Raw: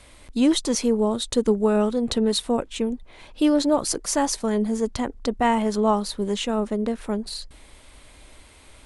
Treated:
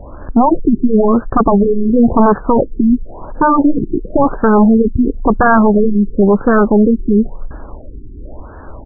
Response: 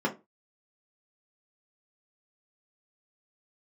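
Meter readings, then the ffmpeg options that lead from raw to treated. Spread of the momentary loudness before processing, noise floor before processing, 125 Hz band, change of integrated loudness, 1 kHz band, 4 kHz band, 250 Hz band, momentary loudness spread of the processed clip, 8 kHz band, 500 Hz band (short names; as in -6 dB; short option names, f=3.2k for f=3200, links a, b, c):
8 LU, -50 dBFS, +14.5 dB, +11.0 dB, +13.0 dB, under -40 dB, +12.0 dB, 5 LU, under -40 dB, +9.5 dB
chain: -af "aresample=16000,aeval=exprs='0.376*sin(PI/2*3.98*val(0)/0.376)':c=same,aresample=44100,afftfilt=real='re*lt(b*sr/1024,390*pow(1800/390,0.5+0.5*sin(2*PI*0.96*pts/sr)))':imag='im*lt(b*sr/1024,390*pow(1800/390,0.5+0.5*sin(2*PI*0.96*pts/sr)))':win_size=1024:overlap=0.75,volume=4dB"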